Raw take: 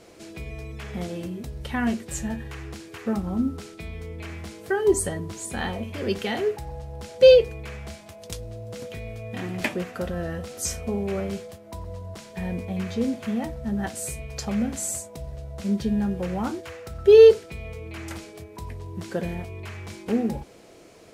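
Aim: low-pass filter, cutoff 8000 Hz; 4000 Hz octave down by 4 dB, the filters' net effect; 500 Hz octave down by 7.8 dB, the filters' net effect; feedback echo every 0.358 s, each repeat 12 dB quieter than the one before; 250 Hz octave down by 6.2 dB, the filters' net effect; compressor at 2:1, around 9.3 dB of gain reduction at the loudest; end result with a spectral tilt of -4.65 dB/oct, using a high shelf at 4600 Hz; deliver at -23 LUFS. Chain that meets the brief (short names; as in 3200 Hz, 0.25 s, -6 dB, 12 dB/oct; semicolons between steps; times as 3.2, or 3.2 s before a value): LPF 8000 Hz; bell 250 Hz -6.5 dB; bell 500 Hz -7 dB; bell 4000 Hz -8.5 dB; high shelf 4600 Hz +6.5 dB; compressor 2:1, threshold -33 dBFS; feedback echo 0.358 s, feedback 25%, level -12 dB; gain +13 dB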